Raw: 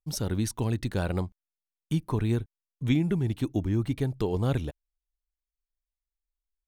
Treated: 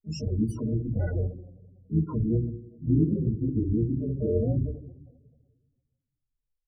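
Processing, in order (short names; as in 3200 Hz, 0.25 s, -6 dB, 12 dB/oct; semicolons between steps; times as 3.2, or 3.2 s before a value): two-slope reverb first 0.49 s, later 1.8 s, from -17 dB, DRR -5.5 dB; loudest bins only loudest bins 8; harmoniser -12 st -12 dB, +5 st -13 dB; gain -4.5 dB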